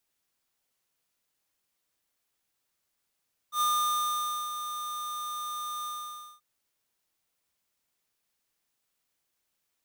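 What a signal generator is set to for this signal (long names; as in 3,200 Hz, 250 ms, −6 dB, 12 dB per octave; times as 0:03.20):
note with an ADSR envelope square 1,210 Hz, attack 88 ms, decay 887 ms, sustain −10 dB, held 2.33 s, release 554 ms −25.5 dBFS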